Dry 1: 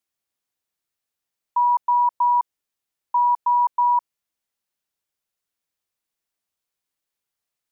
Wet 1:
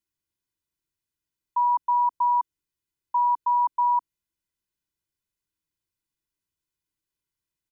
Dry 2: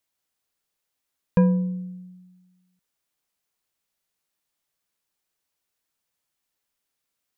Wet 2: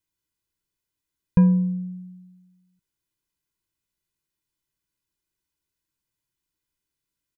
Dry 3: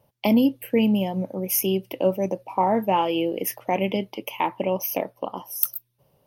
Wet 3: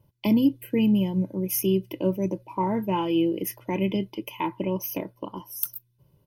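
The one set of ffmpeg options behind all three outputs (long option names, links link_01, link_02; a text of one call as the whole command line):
ffmpeg -i in.wav -af "lowshelf=frequency=380:width_type=q:width=3:gain=9,aecho=1:1:2:0.76,volume=-6.5dB" out.wav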